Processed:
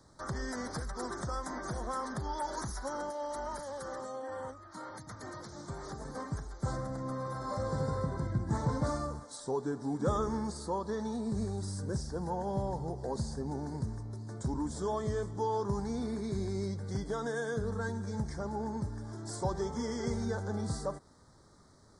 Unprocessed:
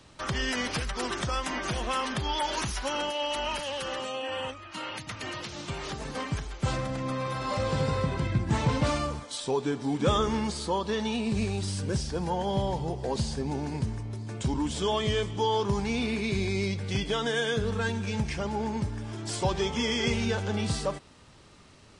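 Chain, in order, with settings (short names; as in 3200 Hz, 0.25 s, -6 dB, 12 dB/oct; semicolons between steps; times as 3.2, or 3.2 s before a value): dynamic EQ 4200 Hz, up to -4 dB, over -49 dBFS, Q 0.91; Butterworth band-stop 2700 Hz, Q 1; gain -5.5 dB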